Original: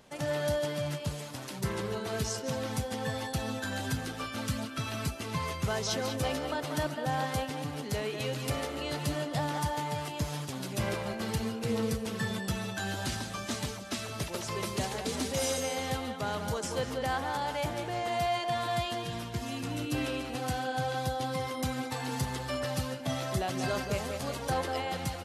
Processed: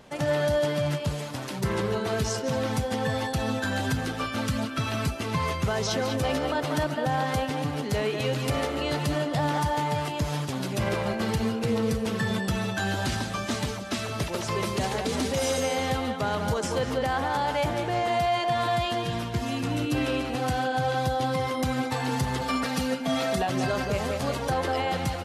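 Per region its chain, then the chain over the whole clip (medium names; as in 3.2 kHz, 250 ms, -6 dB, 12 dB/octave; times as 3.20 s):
22.41–23.47 s: high-pass 110 Hz 6 dB/octave + comb 4.3 ms, depth 93%
whole clip: treble shelf 4.8 kHz -7 dB; peak limiter -24.5 dBFS; trim +7.5 dB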